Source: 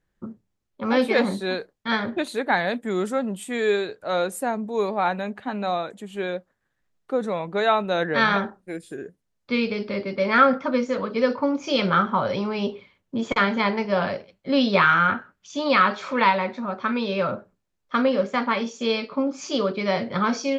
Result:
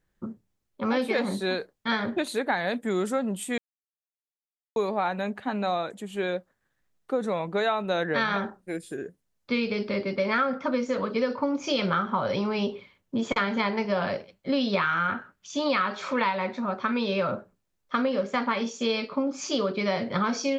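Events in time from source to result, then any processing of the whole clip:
0:03.58–0:04.76: silence
whole clip: high-shelf EQ 7,900 Hz +4.5 dB; downward compressor 6 to 1, threshold −22 dBFS

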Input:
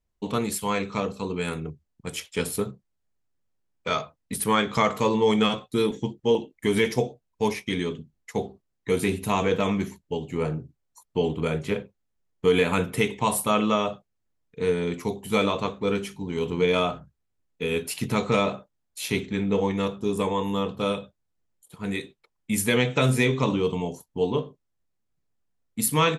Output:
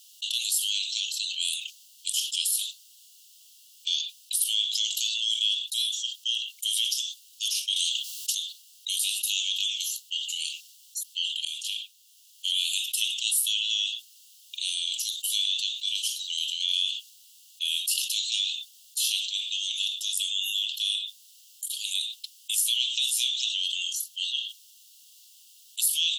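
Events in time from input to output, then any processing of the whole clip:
0:07.76–0:08.35: every bin compressed towards the loudest bin 2 to 1
0:11.45–0:12.53: fade in, from −18.5 dB
whole clip: Chebyshev high-pass filter 2,800 Hz, order 8; envelope flattener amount 70%

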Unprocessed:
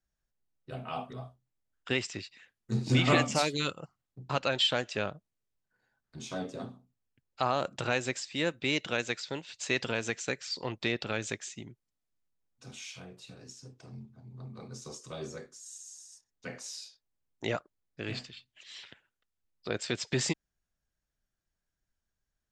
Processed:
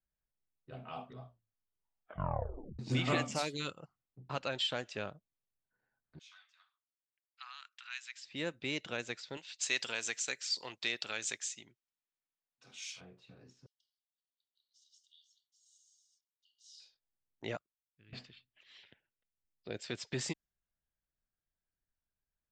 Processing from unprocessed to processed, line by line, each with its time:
0:01.26: tape stop 1.53 s
0:06.19–0:08.25: Bessel high-pass filter 2,200 Hz, order 8
0:09.37–0:13.01: spectral tilt +4 dB per octave
0:13.66–0:16.80: linear-phase brick-wall high-pass 2,800 Hz
0:17.57–0:18.13: guitar amp tone stack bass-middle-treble 6-0-2
0:18.77–0:19.84: parametric band 1,200 Hz −10.5 dB 0.72 octaves
whole clip: low-pass that shuts in the quiet parts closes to 2,500 Hz, open at −27 dBFS; level −7.5 dB

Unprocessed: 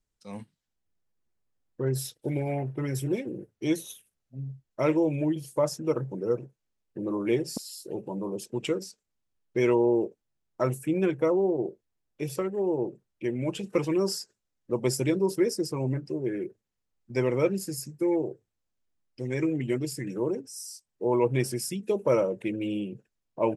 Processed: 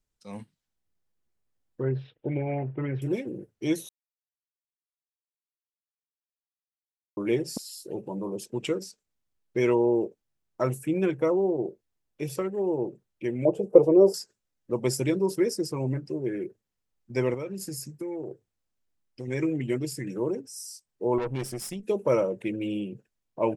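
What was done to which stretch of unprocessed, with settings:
0:01.83–0:03.02: Butterworth low-pass 3,000 Hz
0:03.89–0:07.17: silence
0:13.45–0:14.14: drawn EQ curve 270 Hz 0 dB, 440 Hz +13 dB, 660 Hz +13 dB, 1,700 Hz −18 dB, 3,800 Hz −20 dB, 10,000 Hz −10 dB
0:17.34–0:19.28: downward compressor, threshold −31 dBFS
0:21.18–0:21.85: tube saturation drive 26 dB, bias 0.65

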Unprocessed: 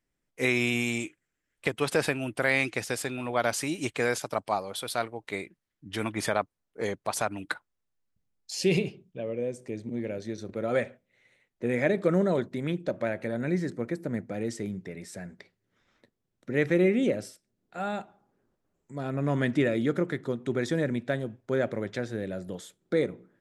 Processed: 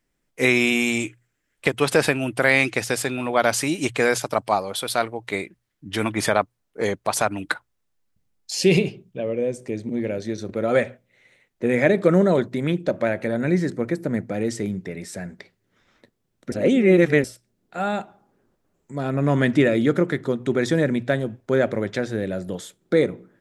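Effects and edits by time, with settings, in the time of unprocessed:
0:16.52–0:17.24: reverse
whole clip: mains-hum notches 60/120 Hz; level +7.5 dB

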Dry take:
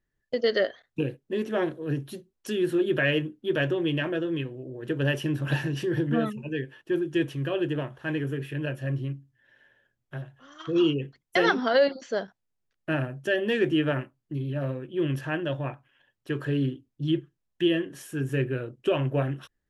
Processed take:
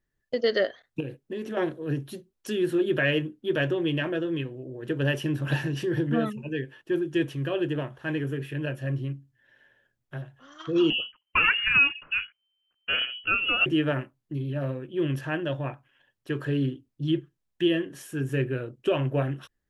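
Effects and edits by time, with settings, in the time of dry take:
0:01.00–0:01.57: downward compressor, threshold −29 dBFS
0:10.90–0:13.66: voice inversion scrambler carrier 3,100 Hz

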